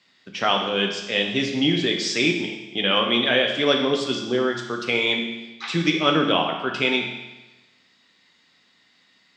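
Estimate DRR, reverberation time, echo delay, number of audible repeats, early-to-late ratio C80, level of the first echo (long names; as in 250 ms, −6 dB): 1.5 dB, 1.1 s, no echo audible, no echo audible, 7.0 dB, no echo audible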